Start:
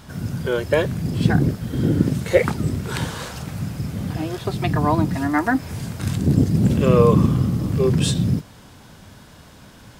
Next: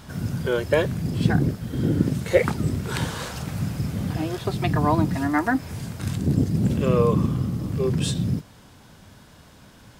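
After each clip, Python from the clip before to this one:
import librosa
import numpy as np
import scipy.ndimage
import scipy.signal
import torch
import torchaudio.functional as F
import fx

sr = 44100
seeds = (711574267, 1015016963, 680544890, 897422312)

y = fx.rider(x, sr, range_db=4, speed_s=2.0)
y = y * librosa.db_to_amplitude(-3.5)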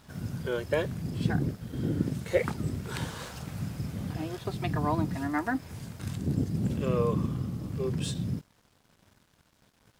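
y = np.sign(x) * np.maximum(np.abs(x) - 10.0 ** (-49.0 / 20.0), 0.0)
y = y * librosa.db_to_amplitude(-7.5)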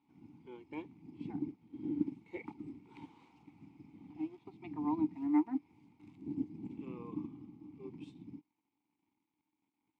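y = fx.vowel_filter(x, sr, vowel='u')
y = fx.upward_expand(y, sr, threshold_db=-52.0, expansion=1.5)
y = y * librosa.db_to_amplitude(4.5)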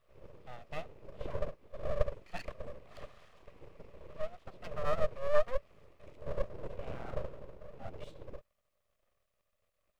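y = np.abs(x)
y = y * librosa.db_to_amplitude(6.0)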